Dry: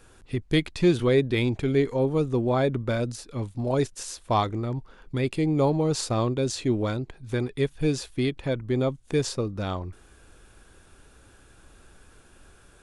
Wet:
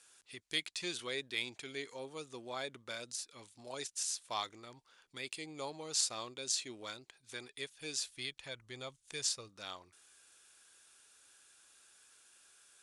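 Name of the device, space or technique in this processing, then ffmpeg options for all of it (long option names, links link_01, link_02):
piezo pickup straight into a mixer: -filter_complex "[0:a]asplit=3[link_01][link_02][link_03];[link_01]afade=type=out:start_time=8.05:duration=0.02[link_04];[link_02]asubboost=boost=4.5:cutoff=110,afade=type=in:start_time=8.05:duration=0.02,afade=type=out:start_time=9.48:duration=0.02[link_05];[link_03]afade=type=in:start_time=9.48:duration=0.02[link_06];[link_04][link_05][link_06]amix=inputs=3:normalize=0,lowpass=8200,aderivative,volume=2.5dB"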